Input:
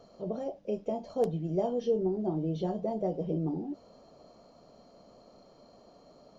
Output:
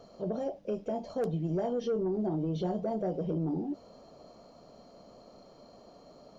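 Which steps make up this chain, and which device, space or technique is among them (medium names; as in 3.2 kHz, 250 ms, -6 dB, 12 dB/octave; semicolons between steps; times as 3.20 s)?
soft clipper into limiter (saturation -21.5 dBFS, distortion -20 dB; peak limiter -27.5 dBFS, peak gain reduction 5 dB); trim +2.5 dB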